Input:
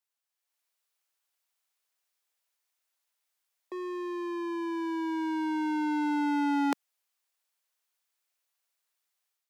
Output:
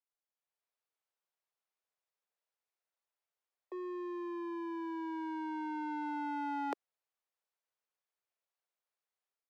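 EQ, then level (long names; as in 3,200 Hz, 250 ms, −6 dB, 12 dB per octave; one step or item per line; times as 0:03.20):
Butterworth high-pass 380 Hz 36 dB per octave
spectral tilt −4 dB per octave
−6.0 dB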